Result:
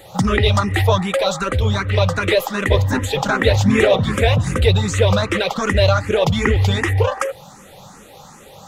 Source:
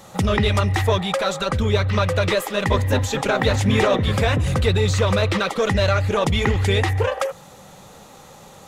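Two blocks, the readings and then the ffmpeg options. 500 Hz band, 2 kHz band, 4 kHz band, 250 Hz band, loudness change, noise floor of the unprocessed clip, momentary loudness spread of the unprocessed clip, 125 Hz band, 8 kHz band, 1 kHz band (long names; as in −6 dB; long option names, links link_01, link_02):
+3.0 dB, +3.0 dB, +2.5 dB, +3.0 dB, +3.0 dB, −45 dBFS, 3 LU, +2.5 dB, +2.0 dB, +2.0 dB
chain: -filter_complex "[0:a]asplit=2[link_01][link_02];[link_02]afreqshift=2.6[link_03];[link_01][link_03]amix=inputs=2:normalize=1,volume=5.5dB"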